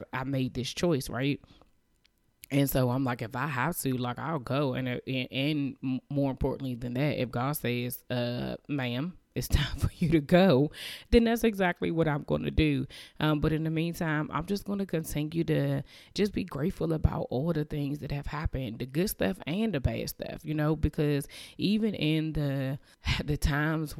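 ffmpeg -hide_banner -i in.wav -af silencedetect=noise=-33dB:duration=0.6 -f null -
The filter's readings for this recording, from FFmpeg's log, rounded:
silence_start: 1.35
silence_end: 2.44 | silence_duration: 1.09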